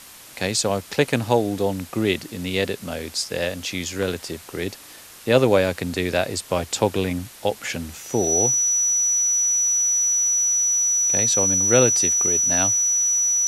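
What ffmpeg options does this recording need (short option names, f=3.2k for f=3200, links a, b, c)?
-af "bandreject=f=5.9k:w=30,afwtdn=0.0079"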